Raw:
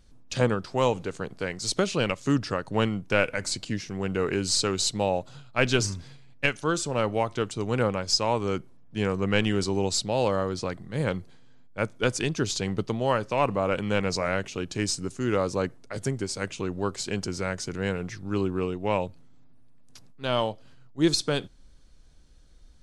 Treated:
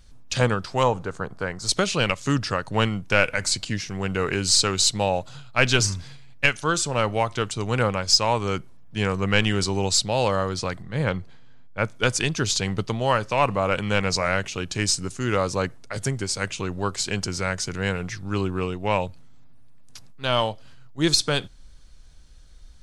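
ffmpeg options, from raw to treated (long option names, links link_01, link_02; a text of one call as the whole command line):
ffmpeg -i in.wav -filter_complex "[0:a]asettb=1/sr,asplit=3[link_01][link_02][link_03];[link_01]atrim=end=0.834[link_04];[link_02]atrim=start=0.83:end=1.69,asetpts=PTS-STARTPTS,afade=type=in:duration=0.004:curve=qsin,afade=type=out:start_time=0.856:duration=0.004:curve=qsin,highshelf=frequency=1800:width_type=q:width=1.5:gain=-8[link_05];[link_03]atrim=start=1.686[link_06];[link_04][link_05]acrossfade=duration=0.004:curve1=hsin:curve2=qsin[link_07];[link_07][link_06]acrossfade=duration=0.004:curve1=qsin:curve2=hsin,asplit=3[link_08][link_09][link_10];[link_08]afade=type=out:start_time=10.81:duration=0.02[link_11];[link_09]aemphasis=mode=reproduction:type=50fm,afade=type=in:start_time=10.81:duration=0.02,afade=type=out:start_time=11.85:duration=0.02[link_12];[link_10]afade=type=in:start_time=11.85:duration=0.02[link_13];[link_11][link_12][link_13]amix=inputs=3:normalize=0,equalizer=frequency=320:width_type=o:width=2.1:gain=-7.5,acontrast=75" out.wav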